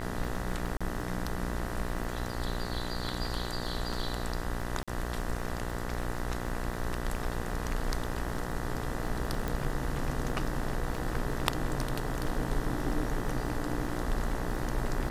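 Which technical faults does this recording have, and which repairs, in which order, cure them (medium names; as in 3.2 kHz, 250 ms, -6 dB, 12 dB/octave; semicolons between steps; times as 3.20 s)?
buzz 60 Hz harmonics 33 -37 dBFS
crackle 23 per s -38 dBFS
0.77–0.81 s: dropout 36 ms
4.83–4.88 s: dropout 46 ms
9.48 s: pop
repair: de-click; de-hum 60 Hz, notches 33; interpolate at 0.77 s, 36 ms; interpolate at 4.83 s, 46 ms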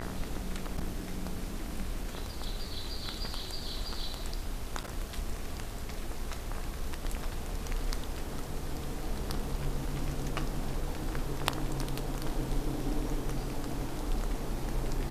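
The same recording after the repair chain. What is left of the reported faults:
9.48 s: pop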